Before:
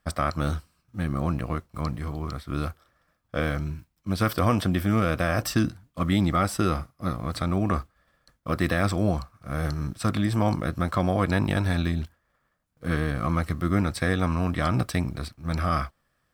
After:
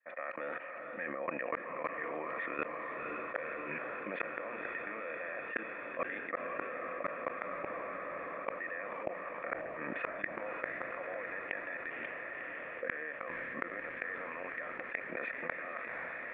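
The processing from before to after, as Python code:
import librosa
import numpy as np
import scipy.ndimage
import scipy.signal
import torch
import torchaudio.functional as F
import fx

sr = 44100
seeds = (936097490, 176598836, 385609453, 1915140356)

y = fx.fade_in_head(x, sr, length_s=2.21)
y = scipy.signal.sosfilt(scipy.signal.butter(4, 250.0, 'highpass', fs=sr, output='sos'), y)
y = fx.band_shelf(y, sr, hz=1500.0, db=14.5, octaves=2.3)
y = fx.level_steps(y, sr, step_db=23)
y = fx.formant_cascade(y, sr, vowel='e')
y = fx.notch(y, sr, hz=790.0, q=12.0)
y = fx.gate_flip(y, sr, shuts_db=-32.0, range_db=-32)
y = fx.echo_diffused(y, sr, ms=516, feedback_pct=69, wet_db=-15.5)
y = fx.env_flatten(y, sr, amount_pct=70)
y = F.gain(torch.from_numpy(y), 9.0).numpy()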